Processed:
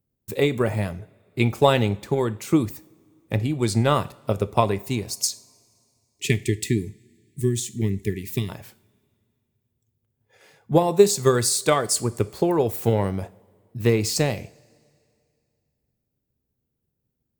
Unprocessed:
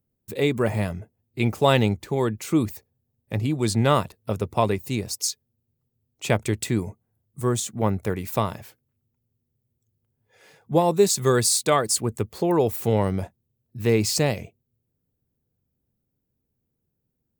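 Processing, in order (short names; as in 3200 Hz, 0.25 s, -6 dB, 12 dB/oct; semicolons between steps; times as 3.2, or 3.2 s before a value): transient shaper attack +6 dB, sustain +2 dB; spectral gain 5.95–8.49, 440–1700 Hz -26 dB; two-slope reverb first 0.44 s, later 2.4 s, from -20 dB, DRR 13.5 dB; gain -2 dB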